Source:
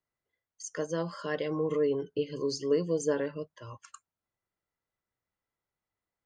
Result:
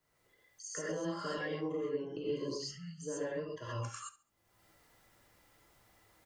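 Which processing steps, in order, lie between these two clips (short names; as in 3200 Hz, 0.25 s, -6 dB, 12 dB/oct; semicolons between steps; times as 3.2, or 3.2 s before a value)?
opening faded in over 1.39 s; compressor 8:1, threshold -41 dBFS, peak gain reduction 19 dB; spectral delete 2.59–3.03, 220–1200 Hz; feedback echo 69 ms, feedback 27%, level -16.5 dB; non-linear reverb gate 0.15 s rising, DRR -6.5 dB; upward compressor, threshold -51 dBFS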